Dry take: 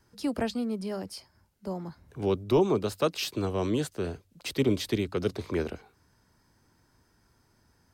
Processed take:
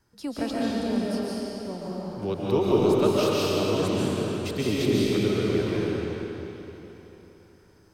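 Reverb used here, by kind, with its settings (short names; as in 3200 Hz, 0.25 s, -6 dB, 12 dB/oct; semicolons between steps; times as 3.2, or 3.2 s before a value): digital reverb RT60 3.6 s, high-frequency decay 0.9×, pre-delay 0.1 s, DRR -7 dB; gain -3 dB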